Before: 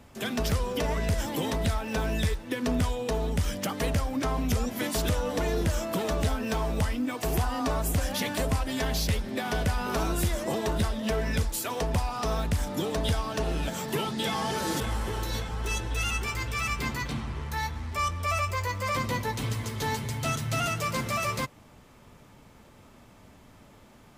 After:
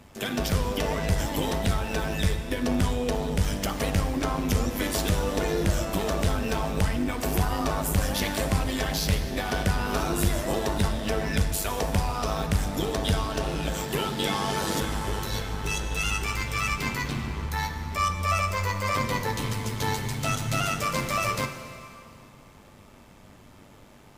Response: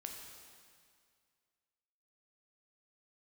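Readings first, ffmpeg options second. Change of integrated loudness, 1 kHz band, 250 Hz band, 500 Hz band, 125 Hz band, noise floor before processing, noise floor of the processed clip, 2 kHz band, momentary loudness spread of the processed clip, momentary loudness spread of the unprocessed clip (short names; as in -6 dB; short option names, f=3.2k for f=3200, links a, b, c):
+2.0 dB, +2.5 dB, +2.0 dB, +1.5 dB, +2.0 dB, -54 dBFS, -51 dBFS, +2.5 dB, 4 LU, 3 LU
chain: -filter_complex "[0:a]tremolo=f=100:d=0.621,bandreject=f=53.87:t=h:w=4,bandreject=f=107.74:t=h:w=4,bandreject=f=161.61:t=h:w=4,bandreject=f=215.48:t=h:w=4,bandreject=f=269.35:t=h:w=4,bandreject=f=323.22:t=h:w=4,bandreject=f=377.09:t=h:w=4,bandreject=f=430.96:t=h:w=4,bandreject=f=484.83:t=h:w=4,bandreject=f=538.7:t=h:w=4,bandreject=f=592.57:t=h:w=4,bandreject=f=646.44:t=h:w=4,bandreject=f=700.31:t=h:w=4,bandreject=f=754.18:t=h:w=4,bandreject=f=808.05:t=h:w=4,bandreject=f=861.92:t=h:w=4,bandreject=f=915.79:t=h:w=4,bandreject=f=969.66:t=h:w=4,bandreject=f=1.02353k:t=h:w=4,bandreject=f=1.0774k:t=h:w=4,bandreject=f=1.13127k:t=h:w=4,bandreject=f=1.18514k:t=h:w=4,bandreject=f=1.23901k:t=h:w=4,bandreject=f=1.29288k:t=h:w=4,bandreject=f=1.34675k:t=h:w=4,bandreject=f=1.40062k:t=h:w=4,bandreject=f=1.45449k:t=h:w=4,bandreject=f=1.50836k:t=h:w=4,bandreject=f=1.56223k:t=h:w=4,bandreject=f=1.6161k:t=h:w=4,bandreject=f=1.66997k:t=h:w=4,bandreject=f=1.72384k:t=h:w=4,bandreject=f=1.77771k:t=h:w=4,bandreject=f=1.83158k:t=h:w=4,bandreject=f=1.88545k:t=h:w=4,bandreject=f=1.93932k:t=h:w=4,bandreject=f=1.99319k:t=h:w=4,bandreject=f=2.04706k:t=h:w=4,asplit=2[a][b];[1:a]atrim=start_sample=2205,asetrate=37044,aresample=44100[c];[b][c]afir=irnorm=-1:irlink=0,volume=2dB[d];[a][d]amix=inputs=2:normalize=0"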